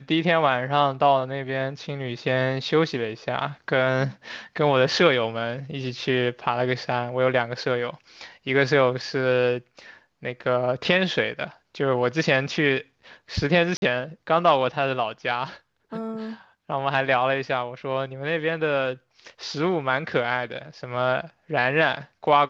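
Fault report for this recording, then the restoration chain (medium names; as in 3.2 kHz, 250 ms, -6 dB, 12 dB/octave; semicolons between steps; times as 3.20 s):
13.77–13.82 s: dropout 51 ms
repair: interpolate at 13.77 s, 51 ms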